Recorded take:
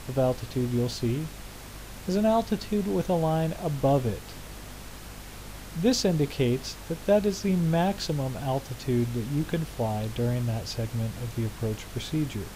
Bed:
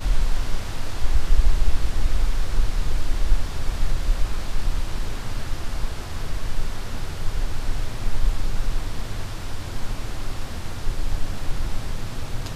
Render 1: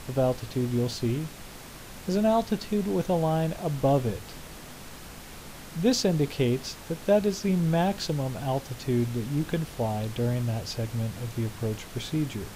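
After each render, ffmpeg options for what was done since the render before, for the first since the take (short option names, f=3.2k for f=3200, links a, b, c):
-af "bandreject=f=50:t=h:w=4,bandreject=f=100:t=h:w=4"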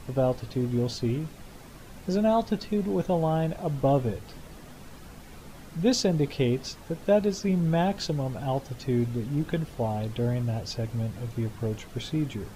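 -af "afftdn=nr=8:nf=-44"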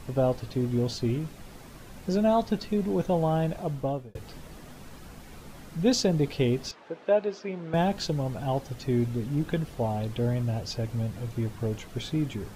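-filter_complex "[0:a]asettb=1/sr,asplit=3[a][b][c];[a]atrim=end=6.714[d];[b]atrim=start=6.71:end=7.74,asetpts=PTS-STARTPTS,afade=t=in:d=0.004:c=qsin,afade=t=out:st=1.026:d=0.004:c=qsin,highpass=390,lowpass=3k[e];[c]atrim=start=7.736[f];[d][e]acrossfade=d=0.004:c1=hsin:c2=qsin[g];[g][f]acrossfade=d=0.004:c1=qsin:c2=hsin,asplit=2[h][i];[h]atrim=end=4.15,asetpts=PTS-STARTPTS,afade=t=out:st=3.58:d=0.57[j];[i]atrim=start=4.15,asetpts=PTS-STARTPTS,afade=t=in:d=0.004:c=hsin[k];[j][k]concat=n=2:v=0:a=1"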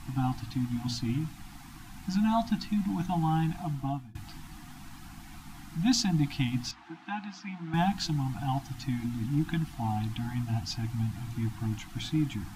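-af "bandreject=f=60:t=h:w=6,bandreject=f=120:t=h:w=6,bandreject=f=180:t=h:w=6,bandreject=f=240:t=h:w=6,afftfilt=real='re*(1-between(b*sr/4096,340,680))':imag='im*(1-between(b*sr/4096,340,680))':win_size=4096:overlap=0.75"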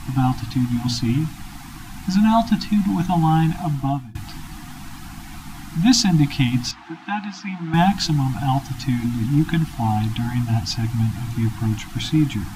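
-af "volume=10.5dB"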